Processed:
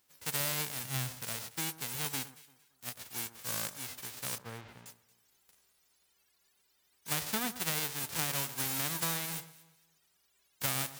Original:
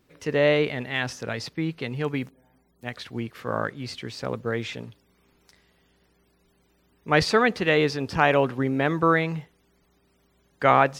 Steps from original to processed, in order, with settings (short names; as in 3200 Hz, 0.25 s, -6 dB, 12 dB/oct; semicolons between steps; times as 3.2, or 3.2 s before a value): spectral whitening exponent 0.1; 0.83–1.23 bell 120 Hz +12.5 dB 0.84 oct; compressor 6:1, threshold -22 dBFS, peak gain reduction 9 dB; 4.38–4.86 tape spacing loss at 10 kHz 37 dB; echo with dull and thin repeats by turns 0.114 s, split 1600 Hz, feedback 51%, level -14 dB; gain -8 dB